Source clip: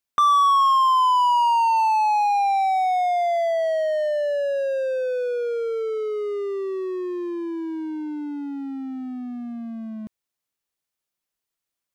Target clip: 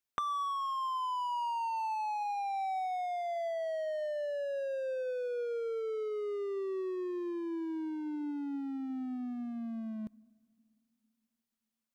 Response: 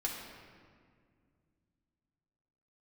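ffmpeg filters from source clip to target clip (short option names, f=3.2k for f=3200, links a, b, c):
-filter_complex "[0:a]acompressor=threshold=-28dB:ratio=6,asplit=2[a][b];[1:a]atrim=start_sample=2205[c];[b][c]afir=irnorm=-1:irlink=0,volume=-24dB[d];[a][d]amix=inputs=2:normalize=0,volume=-6dB"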